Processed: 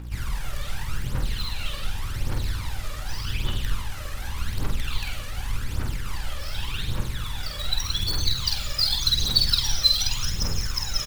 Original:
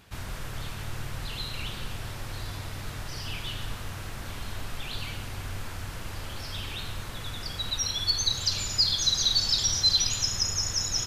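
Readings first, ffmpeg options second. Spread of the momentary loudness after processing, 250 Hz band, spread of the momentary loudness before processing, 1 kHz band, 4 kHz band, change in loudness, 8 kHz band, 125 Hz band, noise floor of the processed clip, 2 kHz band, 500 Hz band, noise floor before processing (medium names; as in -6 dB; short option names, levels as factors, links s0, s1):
14 LU, +4.5 dB, 16 LU, +2.5 dB, +1.5 dB, +1.5 dB, -3.5 dB, +6.0 dB, -33 dBFS, +3.0 dB, +1.5 dB, -38 dBFS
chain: -filter_complex "[0:a]acrossover=split=160|3000[s0][s1][s2];[s1]acompressor=threshold=0.0141:ratio=6[s3];[s0][s3][s2]amix=inputs=3:normalize=0,acrossover=split=5500[s4][s5];[s5]aeval=exprs='(mod(141*val(0)+1,2)-1)/141':c=same[s6];[s4][s6]amix=inputs=2:normalize=0,aeval=exprs='val(0)+0.00501*(sin(2*PI*60*n/s)+sin(2*PI*2*60*n/s)/2+sin(2*PI*3*60*n/s)/3+sin(2*PI*4*60*n/s)/4+sin(2*PI*5*60*n/s)/5)':c=same,asplit=2[s7][s8];[s8]acrusher=bits=5:dc=4:mix=0:aa=0.000001,volume=0.447[s9];[s7][s9]amix=inputs=2:normalize=0,aphaser=in_gain=1:out_gain=1:delay=1.8:decay=0.7:speed=0.86:type=triangular,asuperstop=centerf=680:order=4:qfactor=7.5,asplit=2[s10][s11];[s11]adelay=48,volume=0.562[s12];[s10][s12]amix=inputs=2:normalize=0,volume=0.75"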